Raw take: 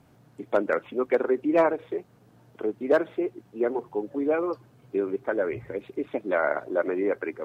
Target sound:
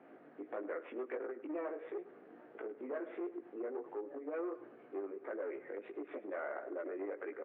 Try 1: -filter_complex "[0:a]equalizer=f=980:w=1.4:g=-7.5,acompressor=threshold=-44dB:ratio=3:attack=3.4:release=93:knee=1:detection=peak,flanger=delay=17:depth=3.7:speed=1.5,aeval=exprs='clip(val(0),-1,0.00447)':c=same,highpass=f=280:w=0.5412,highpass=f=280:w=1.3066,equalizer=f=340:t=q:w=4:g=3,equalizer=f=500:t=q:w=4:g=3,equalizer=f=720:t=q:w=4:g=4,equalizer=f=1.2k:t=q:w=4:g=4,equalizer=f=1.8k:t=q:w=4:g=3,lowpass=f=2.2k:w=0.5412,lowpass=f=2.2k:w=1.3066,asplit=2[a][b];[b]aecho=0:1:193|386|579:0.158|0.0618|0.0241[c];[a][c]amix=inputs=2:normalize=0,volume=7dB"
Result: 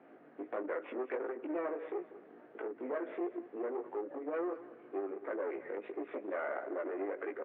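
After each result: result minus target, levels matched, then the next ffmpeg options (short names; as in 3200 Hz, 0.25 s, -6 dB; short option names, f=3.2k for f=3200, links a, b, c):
echo 87 ms late; compressor: peak gain reduction -4.5 dB
-filter_complex "[0:a]equalizer=f=980:w=1.4:g=-7.5,acompressor=threshold=-44dB:ratio=3:attack=3.4:release=93:knee=1:detection=peak,flanger=delay=17:depth=3.7:speed=1.5,aeval=exprs='clip(val(0),-1,0.00447)':c=same,highpass=f=280:w=0.5412,highpass=f=280:w=1.3066,equalizer=f=340:t=q:w=4:g=3,equalizer=f=500:t=q:w=4:g=3,equalizer=f=720:t=q:w=4:g=4,equalizer=f=1.2k:t=q:w=4:g=4,equalizer=f=1.8k:t=q:w=4:g=3,lowpass=f=2.2k:w=0.5412,lowpass=f=2.2k:w=1.3066,asplit=2[a][b];[b]aecho=0:1:106|212|318:0.158|0.0618|0.0241[c];[a][c]amix=inputs=2:normalize=0,volume=7dB"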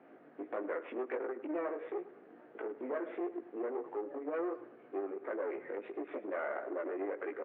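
compressor: peak gain reduction -4.5 dB
-filter_complex "[0:a]equalizer=f=980:w=1.4:g=-7.5,acompressor=threshold=-51dB:ratio=3:attack=3.4:release=93:knee=1:detection=peak,flanger=delay=17:depth=3.7:speed=1.5,aeval=exprs='clip(val(0),-1,0.00447)':c=same,highpass=f=280:w=0.5412,highpass=f=280:w=1.3066,equalizer=f=340:t=q:w=4:g=3,equalizer=f=500:t=q:w=4:g=3,equalizer=f=720:t=q:w=4:g=4,equalizer=f=1.2k:t=q:w=4:g=4,equalizer=f=1.8k:t=q:w=4:g=3,lowpass=f=2.2k:w=0.5412,lowpass=f=2.2k:w=1.3066,asplit=2[a][b];[b]aecho=0:1:106|212|318:0.158|0.0618|0.0241[c];[a][c]amix=inputs=2:normalize=0,volume=7dB"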